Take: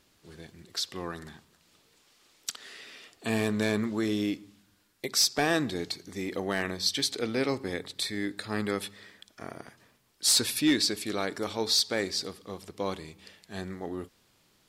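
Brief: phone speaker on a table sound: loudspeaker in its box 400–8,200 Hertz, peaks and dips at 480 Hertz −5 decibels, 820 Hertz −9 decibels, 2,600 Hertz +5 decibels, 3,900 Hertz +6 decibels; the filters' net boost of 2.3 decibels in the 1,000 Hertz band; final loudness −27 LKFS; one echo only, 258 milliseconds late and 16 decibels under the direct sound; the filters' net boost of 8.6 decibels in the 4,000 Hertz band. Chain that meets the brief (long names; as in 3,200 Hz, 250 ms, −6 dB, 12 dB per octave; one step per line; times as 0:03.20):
loudspeaker in its box 400–8,200 Hz, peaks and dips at 480 Hz −5 dB, 820 Hz −9 dB, 2,600 Hz +5 dB, 3,900 Hz +6 dB
parametric band 1,000 Hz +7.5 dB
parametric band 4,000 Hz +5.5 dB
single-tap delay 258 ms −16 dB
level −3.5 dB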